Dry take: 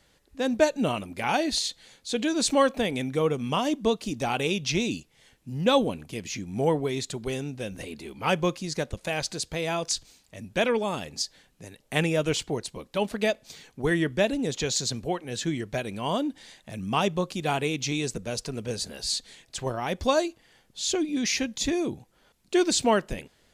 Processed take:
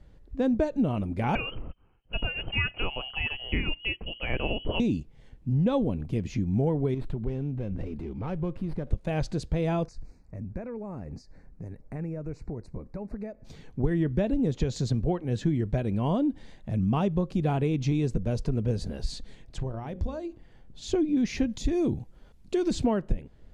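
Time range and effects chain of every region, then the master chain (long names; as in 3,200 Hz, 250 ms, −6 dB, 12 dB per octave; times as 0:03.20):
0:01.35–0:04.80: voice inversion scrambler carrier 3,100 Hz + noise gate −54 dBFS, range −13 dB
0:06.94–0:08.87: downward compressor 2.5 to 1, threshold −38 dBFS + high-frequency loss of the air 98 metres + windowed peak hold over 5 samples
0:09.86–0:13.45: high-shelf EQ 4,400 Hz −6.5 dB + downward compressor 3 to 1, threshold −43 dBFS + Butterworth band-reject 3,200 Hz, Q 1.6
0:19.57–0:20.82: downward compressor, threshold −35 dBFS + mains-hum notches 60/120/180/240/300/360/420/480/540 Hz + saturating transformer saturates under 200 Hz
0:21.49–0:22.71: high-shelf EQ 3,000 Hz +9 dB + downward compressor, threshold −24 dBFS
whole clip: spectral tilt −4.5 dB per octave; downward compressor 10 to 1, threshold −19 dBFS; level −2 dB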